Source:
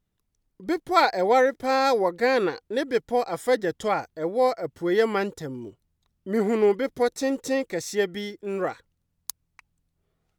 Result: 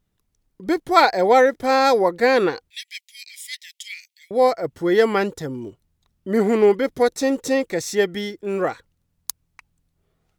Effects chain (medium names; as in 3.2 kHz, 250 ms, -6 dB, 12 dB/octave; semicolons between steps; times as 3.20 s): 2.70–4.31 s: steep high-pass 2.1 kHz 72 dB/octave; trim +5 dB